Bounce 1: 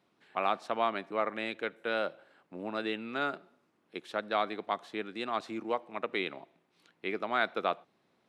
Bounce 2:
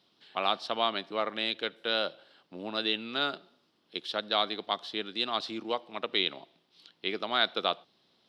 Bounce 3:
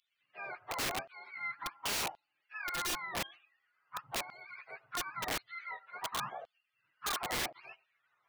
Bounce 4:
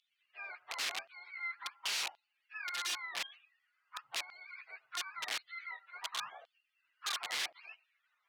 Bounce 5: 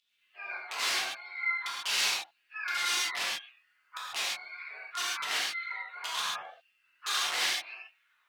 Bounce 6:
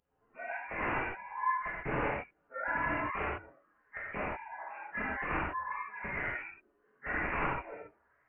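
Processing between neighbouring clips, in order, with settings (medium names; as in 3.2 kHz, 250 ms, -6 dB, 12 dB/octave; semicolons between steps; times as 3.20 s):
high-order bell 4 kHz +13.5 dB 1.1 oct
spectrum inverted on a logarithmic axis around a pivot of 680 Hz; LFO high-pass saw down 0.93 Hz 590–3700 Hz; integer overflow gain 29.5 dB
band-pass filter 3.5 kHz, Q 0.75; trim +2 dB
gated-style reverb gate 170 ms flat, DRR -7.5 dB
frequency inversion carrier 3.1 kHz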